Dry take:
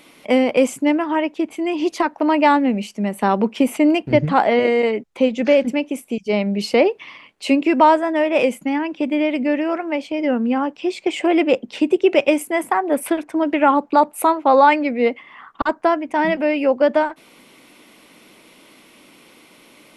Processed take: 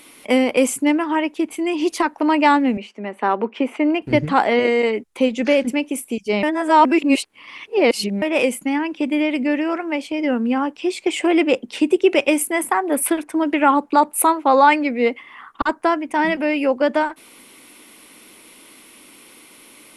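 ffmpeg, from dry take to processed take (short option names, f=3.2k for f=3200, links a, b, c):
-filter_complex "[0:a]asettb=1/sr,asplit=3[a][b][c];[a]atrim=end=2.774[d];[b]atrim=start=2.77:end=4.02,asetpts=PTS-STARTPTS,afade=t=in:d=0.004:c=qsin,afade=t=out:st=1.246:d=0.004:c=qsin,highpass=320,lowpass=2.4k[e];[c]atrim=start=4.016[f];[d][e]acrossfade=d=0.004:c1=hsin:c2=qsin[g];[g][f]acrossfade=d=0.004:c1=qsin:c2=hsin,asplit=3[h][i][j];[h]atrim=end=6.432[k];[i]atrim=start=6.428:end=8.222,asetpts=PTS-STARTPTS,areverse[l];[j]atrim=start=8.218[m];[k][l]acrossfade=d=0.004:c1=hsin:c2=hsin[n];[n][m]acrossfade=d=0.004:c1=hsin:c2=hsin,equalizer=f=160:t=o:w=0.67:g=-7,equalizer=f=630:t=o:w=0.67:g=-5,equalizer=f=10k:t=o:w=0.67:g=10,volume=1.5dB"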